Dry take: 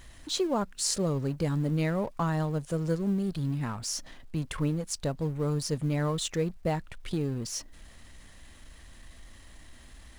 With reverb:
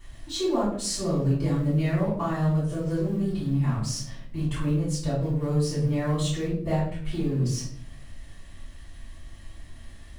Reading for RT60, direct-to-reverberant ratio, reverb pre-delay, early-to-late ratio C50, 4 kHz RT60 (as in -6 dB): 0.60 s, -11.5 dB, 3 ms, 2.5 dB, 0.45 s